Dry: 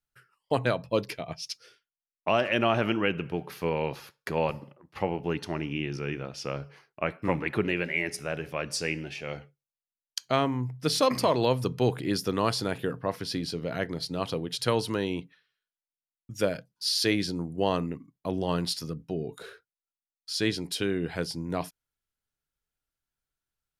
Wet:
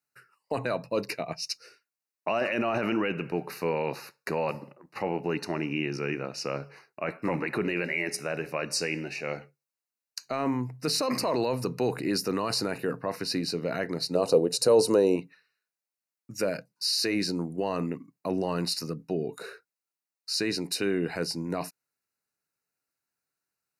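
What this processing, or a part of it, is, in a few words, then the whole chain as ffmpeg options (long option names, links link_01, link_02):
PA system with an anti-feedback notch: -filter_complex "[0:a]highpass=180,asuperstop=centerf=3300:order=8:qfactor=3.9,alimiter=limit=-22dB:level=0:latency=1:release=12,asettb=1/sr,asplit=3[link_01][link_02][link_03];[link_01]atrim=end=14.154[link_04];[link_02]atrim=start=14.15:end=15.16,asetpts=PTS-STARTPTS,afade=type=in:duration=0.004:curve=qsin,afade=type=out:start_time=1.006:duration=0.004:curve=qsin,equalizer=frequency=500:width_type=o:width=1:gain=12,equalizer=frequency=2000:width_type=o:width=1:gain=-10,equalizer=frequency=8000:width_type=o:width=1:gain=8[link_05];[link_03]atrim=start=15.156[link_06];[link_04][link_05]acrossfade=duration=0.004:curve1=hsin:curve2=qsin[link_07];[link_07][link_06]acrossfade=duration=0.004:curve1=qsin:curve2=hsin,volume=3.5dB"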